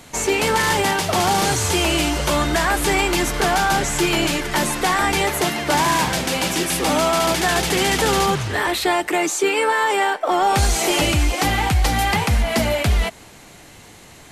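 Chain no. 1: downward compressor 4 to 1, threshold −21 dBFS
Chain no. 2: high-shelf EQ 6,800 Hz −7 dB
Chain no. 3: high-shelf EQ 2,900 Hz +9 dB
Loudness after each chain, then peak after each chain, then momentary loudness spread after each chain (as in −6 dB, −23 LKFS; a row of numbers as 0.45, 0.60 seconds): −23.5, −19.5, −15.0 LKFS; −12.0, −9.0, −2.0 dBFS; 2, 3, 4 LU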